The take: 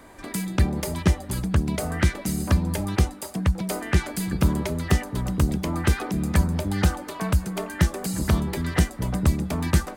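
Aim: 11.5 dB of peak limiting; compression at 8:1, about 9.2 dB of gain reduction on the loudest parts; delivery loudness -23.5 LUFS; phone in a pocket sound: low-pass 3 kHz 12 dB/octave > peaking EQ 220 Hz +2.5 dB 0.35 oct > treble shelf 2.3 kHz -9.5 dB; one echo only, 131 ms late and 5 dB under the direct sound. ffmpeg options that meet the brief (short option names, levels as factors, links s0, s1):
-af "acompressor=threshold=0.0708:ratio=8,alimiter=limit=0.0794:level=0:latency=1,lowpass=3000,equalizer=f=220:t=o:w=0.35:g=2.5,highshelf=f=2300:g=-9.5,aecho=1:1:131:0.562,volume=2.51"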